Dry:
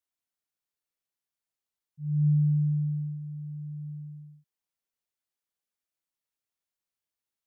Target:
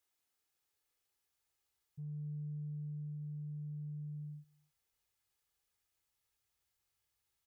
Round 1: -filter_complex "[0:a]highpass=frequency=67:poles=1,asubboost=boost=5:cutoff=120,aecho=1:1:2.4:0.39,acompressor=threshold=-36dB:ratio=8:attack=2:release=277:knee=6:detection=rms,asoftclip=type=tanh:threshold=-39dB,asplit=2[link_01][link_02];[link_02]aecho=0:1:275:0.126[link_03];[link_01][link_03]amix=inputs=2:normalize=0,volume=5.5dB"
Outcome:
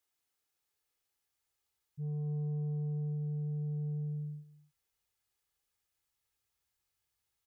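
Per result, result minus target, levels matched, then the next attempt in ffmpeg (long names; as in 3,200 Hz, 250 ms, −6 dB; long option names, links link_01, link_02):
downward compressor: peak gain reduction −10 dB; echo-to-direct +8.5 dB
-filter_complex "[0:a]highpass=frequency=67:poles=1,asubboost=boost=5:cutoff=120,aecho=1:1:2.4:0.39,acompressor=threshold=-47.5dB:ratio=8:attack=2:release=277:knee=6:detection=rms,asoftclip=type=tanh:threshold=-39dB,asplit=2[link_01][link_02];[link_02]aecho=0:1:275:0.126[link_03];[link_01][link_03]amix=inputs=2:normalize=0,volume=5.5dB"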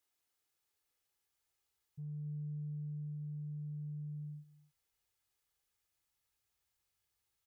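echo-to-direct +8.5 dB
-filter_complex "[0:a]highpass=frequency=67:poles=1,asubboost=boost=5:cutoff=120,aecho=1:1:2.4:0.39,acompressor=threshold=-47.5dB:ratio=8:attack=2:release=277:knee=6:detection=rms,asoftclip=type=tanh:threshold=-39dB,asplit=2[link_01][link_02];[link_02]aecho=0:1:275:0.0473[link_03];[link_01][link_03]amix=inputs=2:normalize=0,volume=5.5dB"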